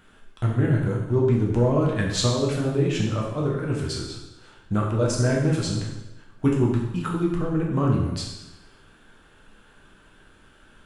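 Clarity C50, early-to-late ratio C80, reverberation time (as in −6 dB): 3.0 dB, 5.5 dB, 1.0 s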